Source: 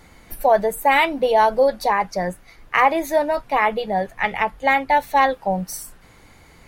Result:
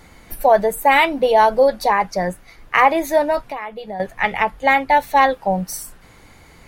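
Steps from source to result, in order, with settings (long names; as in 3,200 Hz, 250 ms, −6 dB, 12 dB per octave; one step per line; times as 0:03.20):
0:03.42–0:04.00: downward compressor 4 to 1, threshold −31 dBFS, peak gain reduction 15 dB
level +2.5 dB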